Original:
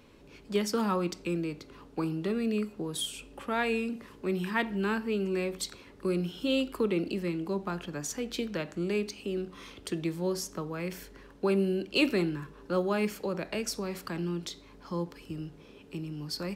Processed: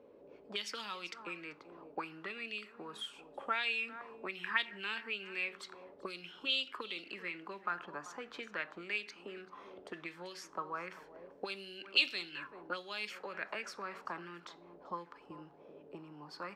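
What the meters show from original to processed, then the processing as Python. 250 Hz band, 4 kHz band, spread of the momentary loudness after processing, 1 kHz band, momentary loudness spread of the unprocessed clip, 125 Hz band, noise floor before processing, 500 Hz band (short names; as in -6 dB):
-20.5 dB, -0.5 dB, 18 LU, -4.5 dB, 11 LU, -23.0 dB, -54 dBFS, -15.5 dB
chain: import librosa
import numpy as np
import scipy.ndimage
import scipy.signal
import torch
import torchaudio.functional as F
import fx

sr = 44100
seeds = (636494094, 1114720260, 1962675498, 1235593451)

y = x + 10.0 ** (-18.0 / 20.0) * np.pad(x, (int(388 * sr / 1000.0), 0))[:len(x)]
y = fx.auto_wah(y, sr, base_hz=490.0, top_hz=3600.0, q=2.7, full_db=-24.5, direction='up')
y = y * librosa.db_to_amplitude(5.5)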